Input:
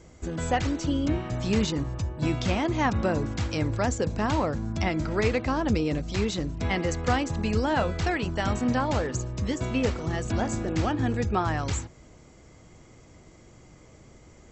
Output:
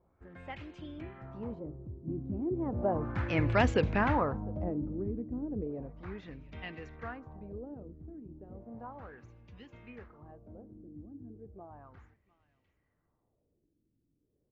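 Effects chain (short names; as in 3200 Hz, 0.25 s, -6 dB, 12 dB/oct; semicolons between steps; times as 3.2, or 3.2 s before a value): Doppler pass-by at 3.67, 23 m/s, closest 8.1 m; echo 0.703 s -23 dB; LFO low-pass sine 0.34 Hz 280–2800 Hz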